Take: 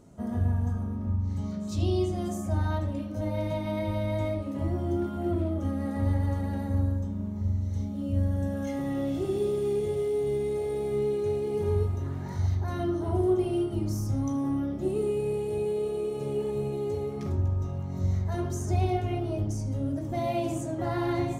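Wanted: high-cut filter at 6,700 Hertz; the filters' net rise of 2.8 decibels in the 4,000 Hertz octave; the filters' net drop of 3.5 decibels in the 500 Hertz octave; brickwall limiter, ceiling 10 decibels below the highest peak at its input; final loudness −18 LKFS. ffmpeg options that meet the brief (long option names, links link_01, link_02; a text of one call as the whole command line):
ffmpeg -i in.wav -af "lowpass=6700,equalizer=frequency=500:width_type=o:gain=-5,equalizer=frequency=4000:width_type=o:gain=4,volume=16dB,alimiter=limit=-10dB:level=0:latency=1" out.wav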